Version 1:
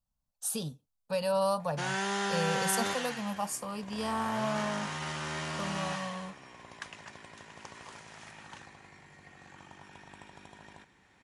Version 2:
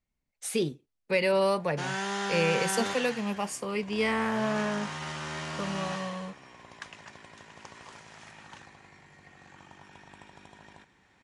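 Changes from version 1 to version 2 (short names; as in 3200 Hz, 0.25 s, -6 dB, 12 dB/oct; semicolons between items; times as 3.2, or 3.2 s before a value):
speech: remove fixed phaser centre 880 Hz, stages 4; master: add LPF 9200 Hz 12 dB/oct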